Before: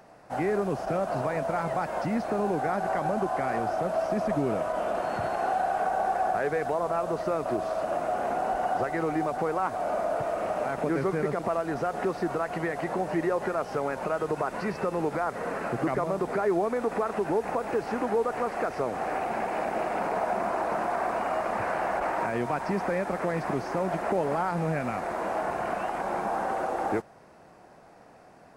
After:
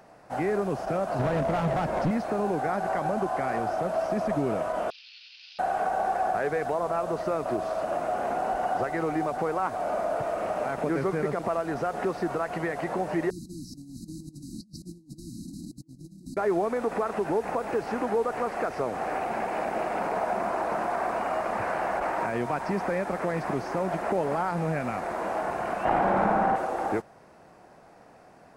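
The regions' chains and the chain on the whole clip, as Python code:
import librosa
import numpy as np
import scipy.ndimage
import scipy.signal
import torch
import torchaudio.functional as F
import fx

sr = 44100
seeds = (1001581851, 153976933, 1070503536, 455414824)

y = fx.chain(x, sr, fx.low_shelf(hz=440.0, db=11.5),
    fx.clip_hard(threshold_db=-22.0),
    fx.doppler_dist(depth_ms=0.11), at=(1.19, 2.11))
y = fx.chain(y, sr, fx.cvsd(bps=32000),
    fx.ellip_bandpass(low_hz=2500.0, high_hz=5000.0, order=3, stop_db=80), at=(4.9, 5.59))
y = fx.chain(y, sr, fx.brickwall_bandstop(low_hz=340.0, high_hz=3800.0),
    fx.over_compress(threshold_db=-42.0, ratio=-0.5), at=(13.3, 16.37))
y = fx.chain(y, sr, fx.bass_treble(bass_db=7, treble_db=-13),
    fx.room_flutter(wall_m=9.7, rt60_s=1.1),
    fx.env_flatten(amount_pct=100), at=(25.85, 26.56))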